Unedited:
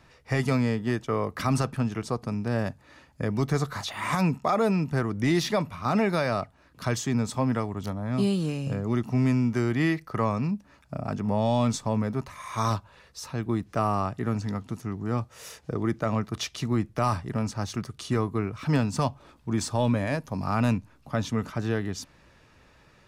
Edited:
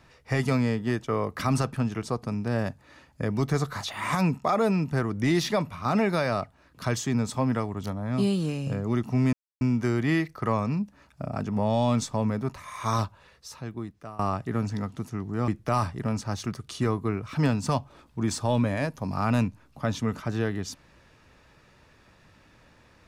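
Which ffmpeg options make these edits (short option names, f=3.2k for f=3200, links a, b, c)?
-filter_complex "[0:a]asplit=4[a][b][c][d];[a]atrim=end=9.33,asetpts=PTS-STARTPTS,afade=t=out:st=9.326:d=0.004:c=hsin,apad=pad_dur=0.28[e];[b]atrim=start=9.33:end=13.91,asetpts=PTS-STARTPTS,afade=t=in:d=0.004:c=hsin,afade=t=out:st=3.44:d=1.14:silence=0.0944061[f];[c]atrim=start=13.91:end=15.202,asetpts=PTS-STARTPTS,afade=t=in:d=0.004:c=hsin:silence=0.0944061[g];[d]atrim=start=16.778[h];[e][f][g]concat=n=3:v=0:a=1[i];[i][h]acrossfade=d=0.004:c1=hsin:c2=hsin"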